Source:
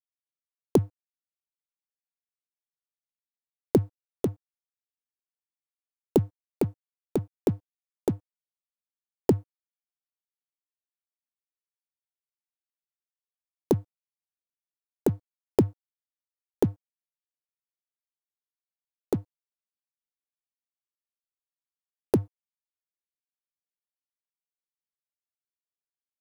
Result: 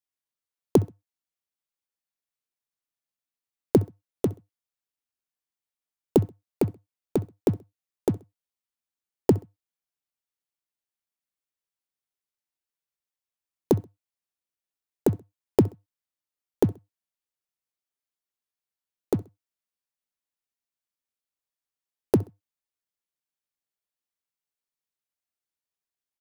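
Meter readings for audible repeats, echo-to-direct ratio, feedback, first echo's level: 2, -21.5 dB, 30%, -22.0 dB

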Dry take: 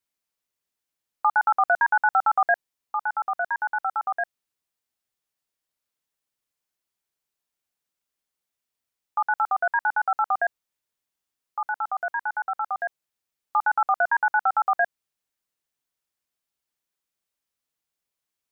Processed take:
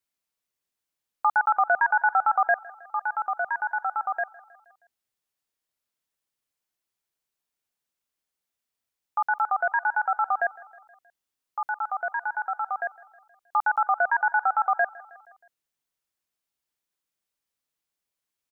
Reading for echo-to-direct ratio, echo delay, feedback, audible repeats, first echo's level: -20.0 dB, 0.158 s, 59%, 3, -22.0 dB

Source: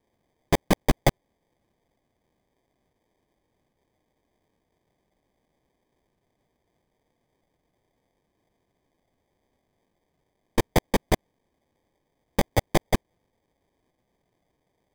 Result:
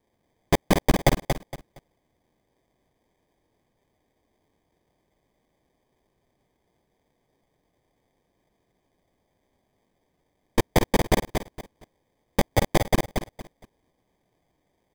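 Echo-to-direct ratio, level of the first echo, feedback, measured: -5.0 dB, -5.5 dB, 24%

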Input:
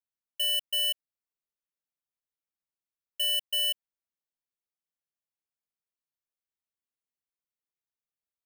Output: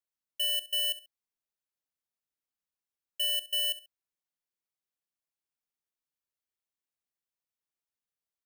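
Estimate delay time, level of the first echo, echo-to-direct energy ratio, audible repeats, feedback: 68 ms, -16.0 dB, -16.0 dB, 2, 25%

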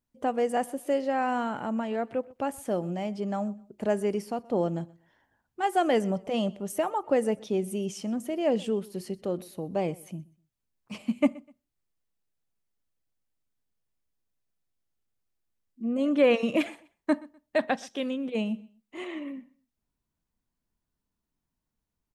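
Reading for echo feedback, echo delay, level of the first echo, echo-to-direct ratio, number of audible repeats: 27%, 0.125 s, -23.0 dB, -22.5 dB, 2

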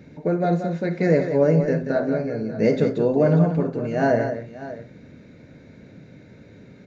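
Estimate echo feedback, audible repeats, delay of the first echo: no steady repeat, 3, 58 ms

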